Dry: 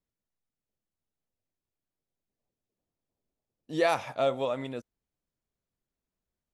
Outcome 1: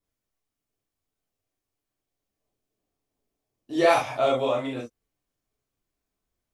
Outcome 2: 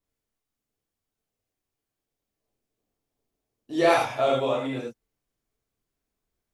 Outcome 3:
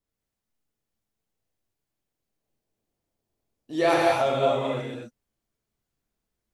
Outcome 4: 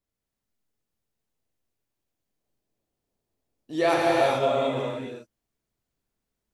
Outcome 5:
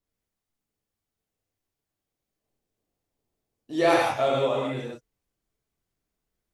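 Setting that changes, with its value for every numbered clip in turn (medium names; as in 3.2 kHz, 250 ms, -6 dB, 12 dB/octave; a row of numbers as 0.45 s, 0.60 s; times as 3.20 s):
gated-style reverb, gate: 90 ms, 130 ms, 300 ms, 460 ms, 200 ms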